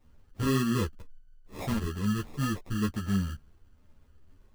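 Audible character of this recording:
phaser sweep stages 4, 2.1 Hz, lowest notch 650–1,400 Hz
aliases and images of a low sample rate 1,500 Hz, jitter 0%
a shimmering, thickened sound

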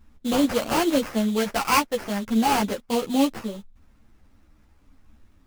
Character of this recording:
aliases and images of a low sample rate 3,700 Hz, jitter 20%
a shimmering, thickened sound

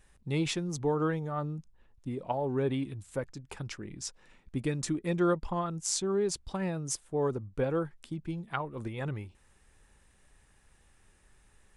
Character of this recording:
background noise floor −64 dBFS
spectral slope −5.0 dB per octave

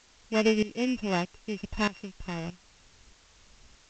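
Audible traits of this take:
a buzz of ramps at a fixed pitch in blocks of 16 samples
tremolo saw up 1.6 Hz, depth 85%
a quantiser's noise floor 10 bits, dither triangular
G.722

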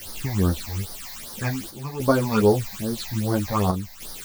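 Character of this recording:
a quantiser's noise floor 6 bits, dither triangular
phaser sweep stages 8, 2.5 Hz, lowest notch 370–2,600 Hz
chopped level 0.5 Hz, depth 60%, duty 85%
a shimmering, thickened sound

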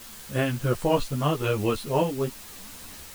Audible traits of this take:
tremolo saw up 0.99 Hz, depth 50%
a quantiser's noise floor 8 bits, dither triangular
a shimmering, thickened sound

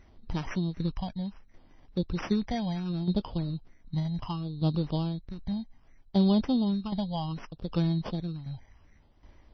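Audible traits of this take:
phaser sweep stages 8, 0.67 Hz, lowest notch 360–3,300 Hz
aliases and images of a low sample rate 4,000 Hz, jitter 0%
tremolo saw down 1.3 Hz, depth 65%
MP3

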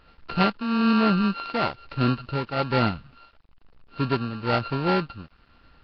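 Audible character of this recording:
a buzz of ramps at a fixed pitch in blocks of 32 samples
tremolo triangle 1.1 Hz, depth 65%
a quantiser's noise floor 10 bits, dither none
Nellymoser

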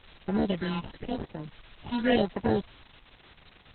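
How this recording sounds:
aliases and images of a low sample rate 1,200 Hz, jitter 0%
phaser sweep stages 6, 0.94 Hz, lowest notch 470–3,500 Hz
a quantiser's noise floor 8 bits, dither triangular
Opus

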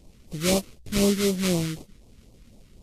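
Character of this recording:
aliases and images of a low sample rate 1,700 Hz, jitter 20%
phaser sweep stages 2, 4 Hz, lowest notch 700–1,500 Hz
Ogg Vorbis

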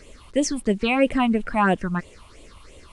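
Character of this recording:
phaser sweep stages 6, 3 Hz, lowest notch 430–1,500 Hz
a quantiser's noise floor 10 bits, dither none
AAC

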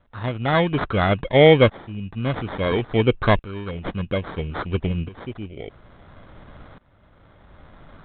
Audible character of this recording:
tremolo saw up 0.59 Hz, depth 90%
aliases and images of a low sample rate 2,700 Hz, jitter 0%
G.726

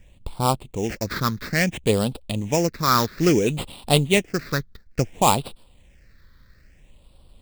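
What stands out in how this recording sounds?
aliases and images of a low sample rate 6,400 Hz, jitter 20%
phaser sweep stages 6, 0.59 Hz, lowest notch 720–1,800 Hz

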